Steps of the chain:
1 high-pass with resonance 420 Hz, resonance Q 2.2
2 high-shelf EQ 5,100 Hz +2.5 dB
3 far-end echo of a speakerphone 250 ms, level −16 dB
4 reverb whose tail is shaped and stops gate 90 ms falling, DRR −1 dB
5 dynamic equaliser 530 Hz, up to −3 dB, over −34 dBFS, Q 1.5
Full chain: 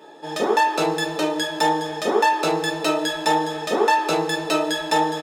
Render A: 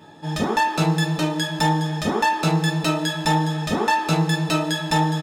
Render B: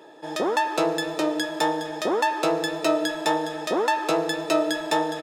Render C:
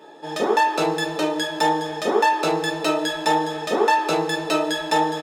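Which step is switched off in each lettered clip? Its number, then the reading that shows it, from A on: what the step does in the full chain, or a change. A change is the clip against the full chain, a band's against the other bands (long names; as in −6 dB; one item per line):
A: 1, 125 Hz band +16.0 dB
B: 4, 250 Hz band +3.0 dB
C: 2, 8 kHz band −1.5 dB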